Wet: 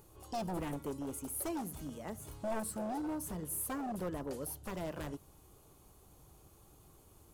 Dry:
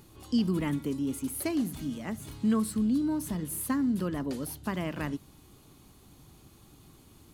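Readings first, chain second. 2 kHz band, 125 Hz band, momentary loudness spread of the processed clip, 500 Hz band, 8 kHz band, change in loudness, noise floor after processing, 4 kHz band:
-8.0 dB, -9.5 dB, 7 LU, -3.0 dB, -3.0 dB, -9.0 dB, -62 dBFS, -10.0 dB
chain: wavefolder -25.5 dBFS; ten-band graphic EQ 125 Hz -4 dB, 250 Hz -10 dB, 500 Hz +4 dB, 2 kHz -6 dB, 4 kHz -8 dB; trim -2 dB

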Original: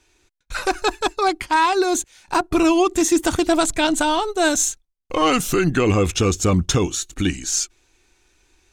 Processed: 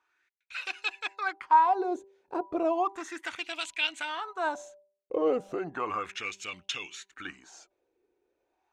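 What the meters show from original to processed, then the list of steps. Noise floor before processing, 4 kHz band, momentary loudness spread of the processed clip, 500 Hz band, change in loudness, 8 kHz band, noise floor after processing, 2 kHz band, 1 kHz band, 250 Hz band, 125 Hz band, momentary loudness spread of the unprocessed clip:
-71 dBFS, -11.5 dB, 14 LU, -12.0 dB, -11.0 dB, -25.5 dB, -80 dBFS, -9.5 dB, -7.0 dB, -18.0 dB, -32.0 dB, 7 LU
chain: de-hum 196.1 Hz, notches 5; wah-wah 0.34 Hz 440–2800 Hz, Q 4.1

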